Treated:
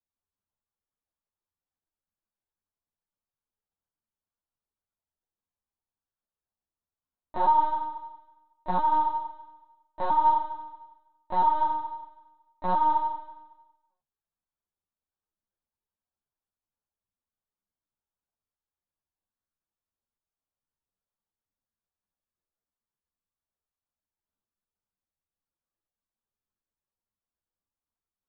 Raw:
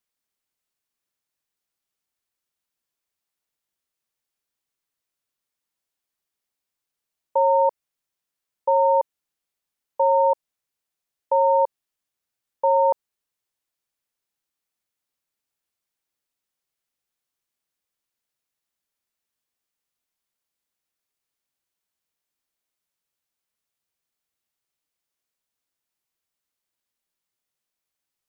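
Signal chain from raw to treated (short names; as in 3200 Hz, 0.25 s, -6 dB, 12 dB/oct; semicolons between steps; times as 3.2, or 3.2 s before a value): median filter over 41 samples; fixed phaser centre 1000 Hz, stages 4; flutter echo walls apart 8.4 m, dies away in 1.1 s; LPC vocoder at 8 kHz pitch kept; ensemble effect; gain +2 dB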